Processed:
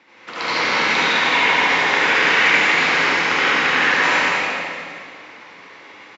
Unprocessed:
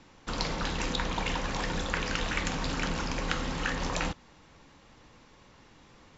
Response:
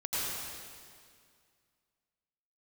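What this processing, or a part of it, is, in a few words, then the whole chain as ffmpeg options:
station announcement: -filter_complex "[0:a]highpass=360,lowpass=4.4k,equalizer=f=2.1k:t=o:w=0.57:g=10,aecho=1:1:72.89|227.4|285.7:0.891|0.562|0.316[a];[1:a]atrim=start_sample=2205[b];[a][b]afir=irnorm=-1:irlink=0,volume=5dB"

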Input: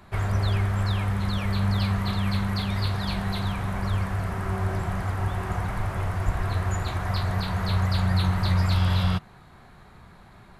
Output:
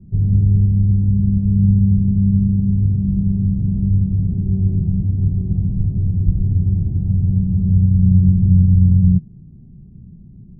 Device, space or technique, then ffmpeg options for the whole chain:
the neighbour's flat through the wall: -af "lowpass=f=270:w=0.5412,lowpass=f=270:w=1.3066,equalizer=f=160:t=o:w=0.93:g=6.5,volume=8.5dB"

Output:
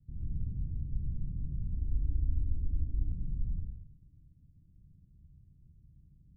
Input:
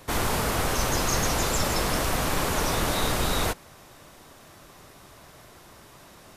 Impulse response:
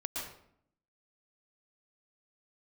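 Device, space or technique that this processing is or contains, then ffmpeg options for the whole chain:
club heard from the street: -filter_complex "[0:a]alimiter=limit=-18.5dB:level=0:latency=1,lowpass=f=160:w=0.5412,lowpass=f=160:w=1.3066[a];[1:a]atrim=start_sample=2205[b];[a][b]afir=irnorm=-1:irlink=0,asettb=1/sr,asplit=3[c][d][e];[c]atrim=end=1.744[f];[d]atrim=start=1.74:end=3.12,asetpts=PTS-STARTPTS,afade=t=in:d=0.004:c=qsin,afade=t=out:st=1.376:d=0.004:c=qsin,aecho=1:1:3:0.85,atrim=end_sample=60858[g];[e]atrim=start=3.116[h];[f][g]acrossfade=d=0.004:c1=hsin:c2=qsin[i];[i][h]acrossfade=d=0.004:c1=qsin:c2=hsin,volume=-4.5dB"

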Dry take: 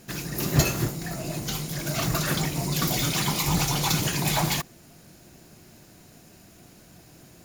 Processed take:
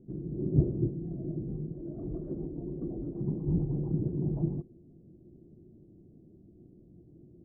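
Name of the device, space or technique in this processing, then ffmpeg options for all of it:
under water: -filter_complex "[0:a]lowpass=f=400:w=0.5412,lowpass=f=400:w=1.3066,equalizer=f=350:t=o:w=0.37:g=5.5,asettb=1/sr,asplit=3[a][b][c];[a]atrim=end=1.724[d];[b]atrim=start=1.72:end=3.21,asetpts=PTS-STARTPTS,afade=t=in:d=0.004:c=qsin,afade=t=out:st=1.486:d=0.004:c=qsin,equalizer=f=140:t=o:w=1.2:g=-11[e];[c]atrim=start=3.206[f];[d][e]acrossfade=d=0.004:c1=hsin:c2=qsin[g];[g][f]acrossfade=d=0.004:c1=qsin:c2=hsin,volume=-3dB"

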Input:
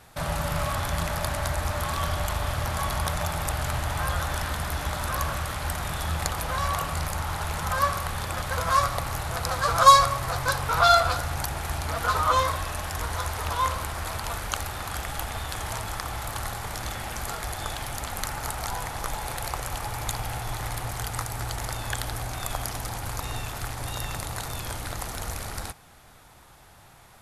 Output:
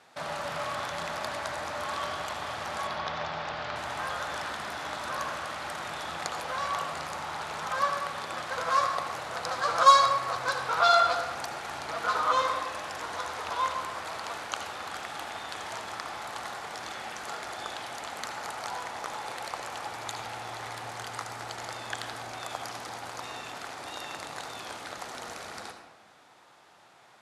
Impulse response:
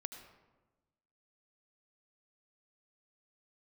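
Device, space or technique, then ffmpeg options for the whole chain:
supermarket ceiling speaker: -filter_complex "[0:a]asettb=1/sr,asplit=3[a][b][c];[a]atrim=end=2.874[d];[b]atrim=start=2.87:end=3.76,asetpts=PTS-STARTPTS,afade=t=in:d=0.004:c=qsin,afade=t=out:st=0.886:d=0.004:c=qsin,lowpass=f=5.1k:w=0.5412,lowpass=f=5.1k:w=1.3066[e];[c]atrim=start=3.756[f];[d][e]acrossfade=d=0.004:c1=hsin:c2=qsin[g];[g][f]acrossfade=d=0.004:c1=qsin:c2=hsin,highpass=280,lowpass=6.3k[h];[1:a]atrim=start_sample=2205[i];[h][i]afir=irnorm=-1:irlink=0"

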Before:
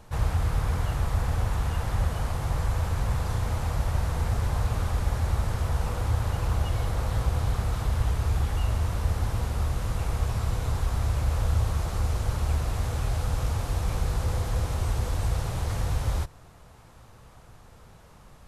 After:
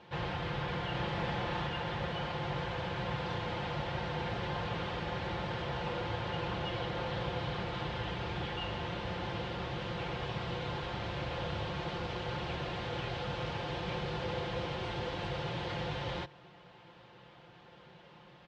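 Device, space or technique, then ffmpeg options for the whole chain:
kitchen radio: -filter_complex "[0:a]highpass=180,equalizer=f=220:t=q:w=4:g=-5,equalizer=f=690:t=q:w=4:g=-4,equalizer=f=1.2k:t=q:w=4:g=-7,equalizer=f=3.1k:t=q:w=4:g=5,lowpass=f=4k:w=0.5412,lowpass=f=4k:w=1.3066,asettb=1/sr,asplit=3[a][b][c];[a]atrim=end=0.914[d];[b]atrim=start=0.91:end=1.67,asetpts=PTS-STARTPTS,afade=t=in:d=0.004:c=qsin,afade=t=out:st=0.756:d=0.004:c=qsin,asplit=2[e][f];[f]adelay=32,volume=-3dB[g];[e][g]amix=inputs=2:normalize=0,atrim=end_sample=33516[h];[c]atrim=start=1.666[i];[d][h]acrossfade=d=0.004:c1=hsin:c2=qsin[j];[j][i]acrossfade=d=0.004:c1=qsin:c2=hsin,aecho=1:1:5.7:0.57"

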